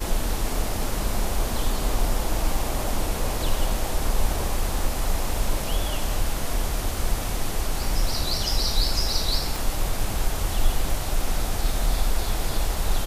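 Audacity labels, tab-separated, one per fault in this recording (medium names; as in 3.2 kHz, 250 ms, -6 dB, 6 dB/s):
9.560000	9.560000	pop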